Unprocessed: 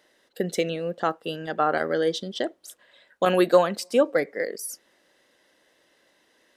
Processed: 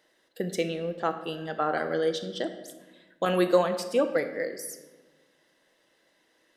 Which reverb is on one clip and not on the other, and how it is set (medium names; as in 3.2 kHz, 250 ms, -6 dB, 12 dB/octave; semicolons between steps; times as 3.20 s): simulated room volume 830 m³, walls mixed, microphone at 0.68 m; trim -4.5 dB